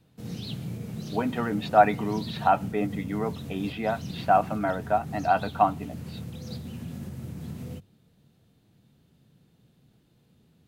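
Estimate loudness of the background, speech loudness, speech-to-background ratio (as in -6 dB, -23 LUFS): -37.5 LUFS, -26.5 LUFS, 11.0 dB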